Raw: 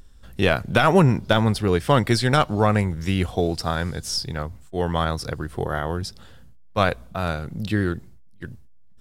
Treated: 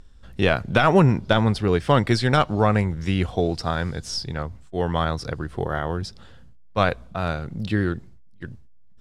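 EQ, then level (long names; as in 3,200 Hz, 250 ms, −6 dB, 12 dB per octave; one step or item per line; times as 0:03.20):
high-frequency loss of the air 57 metres
0.0 dB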